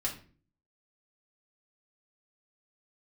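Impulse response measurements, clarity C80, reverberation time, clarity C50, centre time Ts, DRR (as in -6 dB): 15.0 dB, 0.40 s, 9.5 dB, 17 ms, -3.0 dB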